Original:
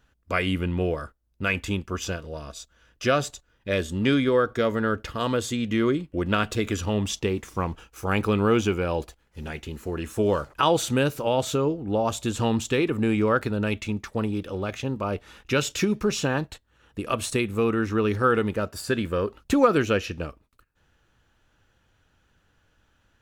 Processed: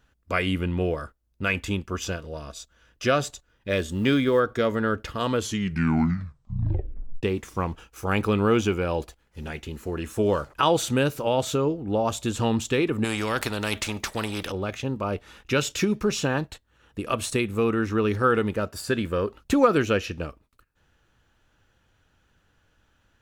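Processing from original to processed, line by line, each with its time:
3.69–4.40 s: companded quantiser 8-bit
5.33 s: tape stop 1.90 s
13.04–14.52 s: spectrum-flattening compressor 2:1

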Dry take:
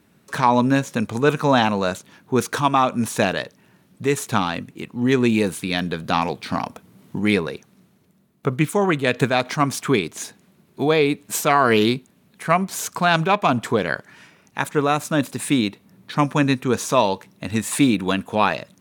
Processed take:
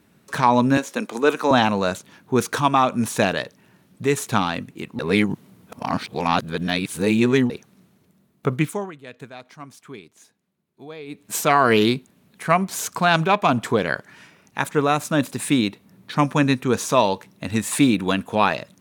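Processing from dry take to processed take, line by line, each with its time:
0.77–1.51 s: high-pass 250 Hz 24 dB/octave
4.99–7.50 s: reverse
8.55–11.42 s: dip -20 dB, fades 0.36 s

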